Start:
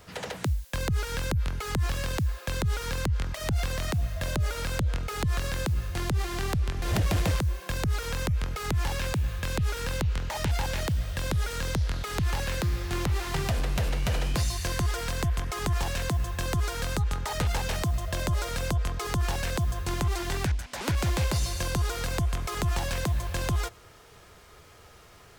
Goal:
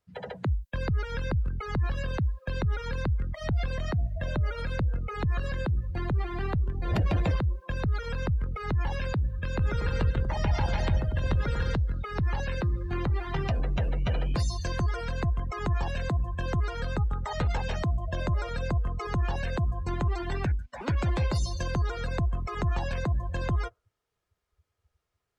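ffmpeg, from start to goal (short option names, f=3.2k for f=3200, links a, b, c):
-filter_complex "[0:a]asettb=1/sr,asplit=3[a][b][c];[a]atrim=end=9.454[d];[b]atrim=start=9.45:end=11.75,asetpts=PTS-STARTPTS,afade=t=in:d=0.004:c=qsin,afade=t=out:st=2.296:d=0.004:c=qsin,aecho=1:1:140|238|306.6|354.6|388.2:0.631|0.398|0.251|0.158|0.1,atrim=end_sample=101430[e];[c]atrim=start=11.746[f];[d][e]acrossfade=d=0.004:c1=hsin:c2=qsin[g];[g][f]acrossfade=d=0.004:c1=qsin:c2=hsin,afftdn=nr=31:nf=-34"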